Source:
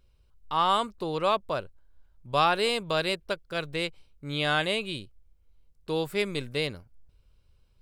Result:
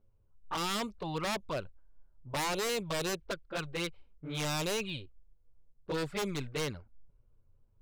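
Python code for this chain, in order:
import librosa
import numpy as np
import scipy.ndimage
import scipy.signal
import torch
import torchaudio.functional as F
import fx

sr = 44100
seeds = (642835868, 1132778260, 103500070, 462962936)

y = fx.env_lowpass(x, sr, base_hz=910.0, full_db=-22.5)
y = fx.env_flanger(y, sr, rest_ms=9.8, full_db=-23.5)
y = 10.0 ** (-27.5 / 20.0) * (np.abs((y / 10.0 ** (-27.5 / 20.0) + 3.0) % 4.0 - 2.0) - 1.0)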